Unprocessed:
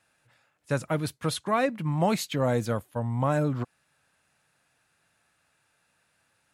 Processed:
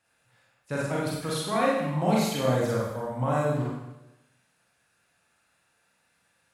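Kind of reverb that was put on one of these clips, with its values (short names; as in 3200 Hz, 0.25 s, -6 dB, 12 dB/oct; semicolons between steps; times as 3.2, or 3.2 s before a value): Schroeder reverb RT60 0.93 s, combs from 32 ms, DRR -5.5 dB; gain -5.5 dB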